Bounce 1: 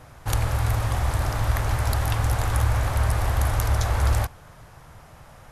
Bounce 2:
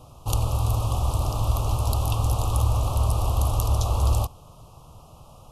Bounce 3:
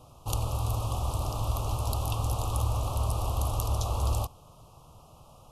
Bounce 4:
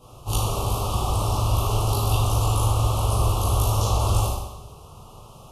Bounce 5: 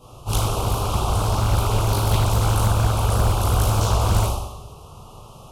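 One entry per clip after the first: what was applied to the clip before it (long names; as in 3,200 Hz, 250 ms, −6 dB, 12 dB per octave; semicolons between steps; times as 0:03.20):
elliptic band-stop filter 1,200–2,700 Hz, stop band 70 dB
low-shelf EQ 150 Hz −3.5 dB; level −4 dB
convolution reverb RT60 1.0 s, pre-delay 14 ms, DRR −8.5 dB
highs frequency-modulated by the lows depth 0.77 ms; level +2.5 dB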